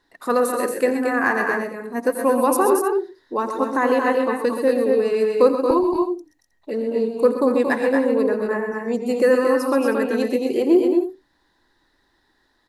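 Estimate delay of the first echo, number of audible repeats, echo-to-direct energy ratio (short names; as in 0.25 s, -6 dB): 85 ms, 4, -1.5 dB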